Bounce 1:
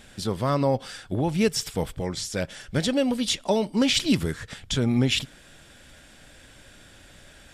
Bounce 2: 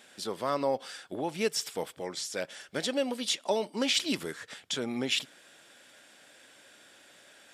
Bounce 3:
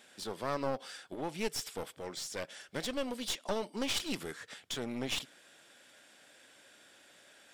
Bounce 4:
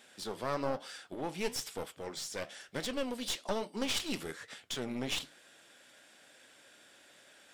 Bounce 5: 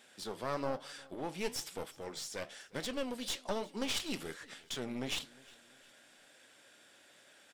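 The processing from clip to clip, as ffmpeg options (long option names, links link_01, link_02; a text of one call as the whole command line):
ffmpeg -i in.wav -af "highpass=350,volume=-4dB" out.wav
ffmpeg -i in.wav -af "aeval=exprs='clip(val(0),-1,0.0158)':channel_layout=same,volume=-3.5dB" out.wav
ffmpeg -i in.wav -af "flanger=delay=7.6:depth=9:regen=-72:speed=1.1:shape=sinusoidal,volume=4.5dB" out.wav
ffmpeg -i in.wav -af "aecho=1:1:356|712|1068:0.0668|0.0261|0.0102,volume=-2dB" out.wav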